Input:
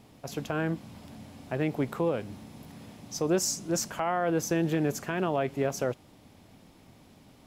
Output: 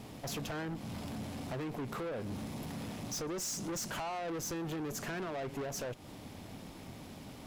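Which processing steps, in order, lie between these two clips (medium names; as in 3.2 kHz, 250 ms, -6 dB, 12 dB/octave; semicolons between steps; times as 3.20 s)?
compression 6:1, threshold -34 dBFS, peak gain reduction 12 dB; valve stage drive 44 dB, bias 0.35; trim +8.5 dB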